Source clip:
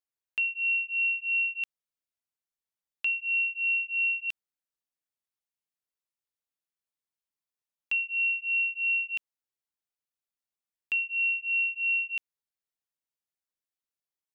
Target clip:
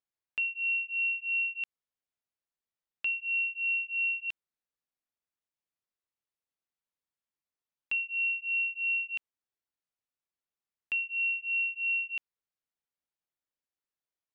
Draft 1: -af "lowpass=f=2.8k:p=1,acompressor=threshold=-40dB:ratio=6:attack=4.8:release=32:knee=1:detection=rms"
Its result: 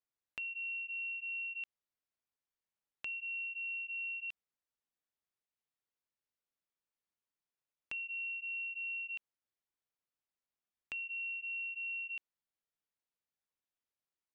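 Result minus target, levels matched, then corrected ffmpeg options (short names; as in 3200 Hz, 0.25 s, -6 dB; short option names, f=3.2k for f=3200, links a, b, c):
compressor: peak gain reduction +11.5 dB
-af "lowpass=f=2.8k:p=1"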